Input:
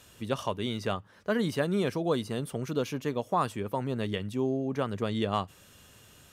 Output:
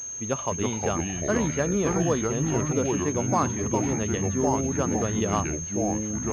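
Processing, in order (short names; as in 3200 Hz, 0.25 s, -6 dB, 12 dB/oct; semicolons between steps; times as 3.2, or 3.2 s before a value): echoes that change speed 0.239 s, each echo -4 st, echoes 3; pulse-width modulation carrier 6400 Hz; gain +2.5 dB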